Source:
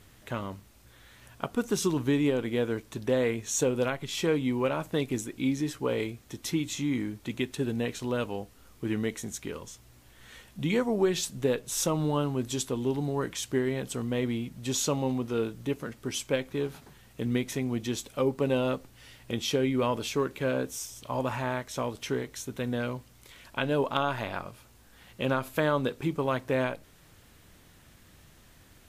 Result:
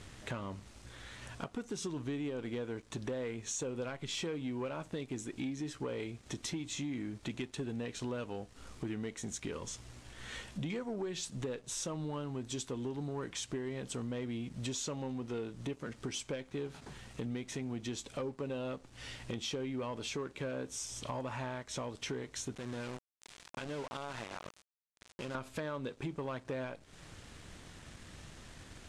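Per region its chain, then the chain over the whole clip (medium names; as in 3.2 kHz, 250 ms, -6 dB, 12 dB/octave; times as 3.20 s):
22.55–25.35 s: compression 2.5:1, threshold -47 dBFS + small samples zeroed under -45 dBFS
whole clip: compression 6:1, threshold -41 dBFS; waveshaping leveller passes 2; low-pass 8.9 kHz 24 dB/octave; trim -2.5 dB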